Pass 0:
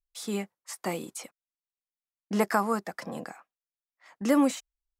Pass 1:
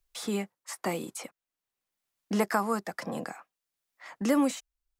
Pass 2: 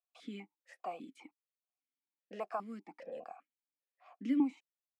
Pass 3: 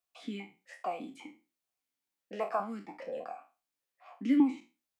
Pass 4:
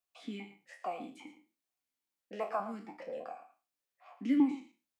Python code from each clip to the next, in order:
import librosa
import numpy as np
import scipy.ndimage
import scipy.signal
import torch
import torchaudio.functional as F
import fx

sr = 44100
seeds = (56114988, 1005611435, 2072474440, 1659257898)

y1 = fx.band_squash(x, sr, depth_pct=40)
y2 = fx.vowel_held(y1, sr, hz=5.0)
y2 = y2 * librosa.db_to_amplitude(-1.5)
y3 = fx.spec_trails(y2, sr, decay_s=0.31)
y3 = y3 * librosa.db_to_amplitude(5.0)
y4 = y3 + 10.0 ** (-13.0 / 20.0) * np.pad(y3, (int(114 * sr / 1000.0), 0))[:len(y3)]
y4 = y4 * librosa.db_to_amplitude(-2.5)